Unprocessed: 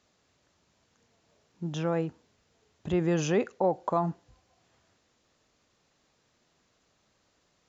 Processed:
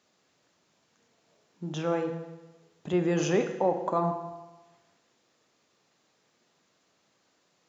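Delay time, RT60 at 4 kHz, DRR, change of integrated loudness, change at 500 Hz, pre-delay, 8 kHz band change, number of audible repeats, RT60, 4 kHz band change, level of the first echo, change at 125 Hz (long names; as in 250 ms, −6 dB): no echo audible, 1.0 s, 5.5 dB, 0.0 dB, +1.0 dB, 6 ms, can't be measured, no echo audible, 1.1 s, +1.0 dB, no echo audible, −1.5 dB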